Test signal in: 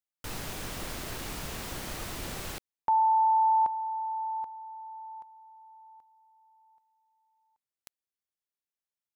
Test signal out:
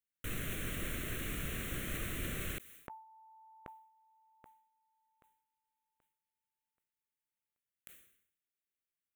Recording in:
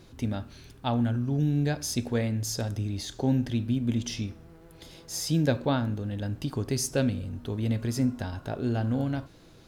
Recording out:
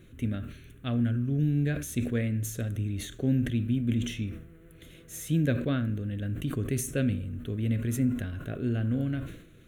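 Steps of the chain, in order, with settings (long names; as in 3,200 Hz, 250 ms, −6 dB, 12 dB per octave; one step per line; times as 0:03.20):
phaser with its sweep stopped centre 2,100 Hz, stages 4
level that may fall only so fast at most 83 dB per second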